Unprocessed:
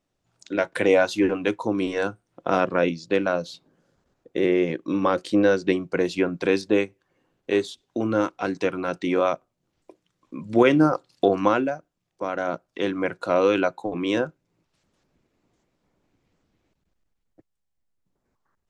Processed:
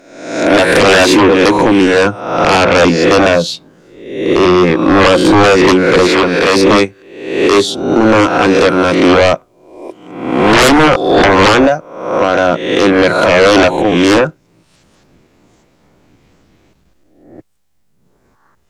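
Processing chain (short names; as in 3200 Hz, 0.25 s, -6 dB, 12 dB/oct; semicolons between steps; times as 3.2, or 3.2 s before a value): spectral swells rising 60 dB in 0.76 s; sine folder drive 14 dB, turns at -3.5 dBFS; 6.07–6.56 overdrive pedal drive 4 dB, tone 5400 Hz, clips at -3 dBFS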